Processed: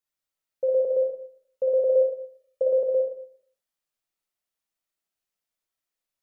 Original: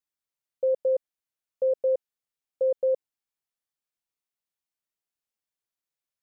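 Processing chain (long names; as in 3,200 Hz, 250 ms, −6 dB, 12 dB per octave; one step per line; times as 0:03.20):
0:01.74–0:02.62: comb filter 1.7 ms, depth 57%
comb and all-pass reverb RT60 0.58 s, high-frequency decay 0.7×, pre-delay 15 ms, DRR −1.5 dB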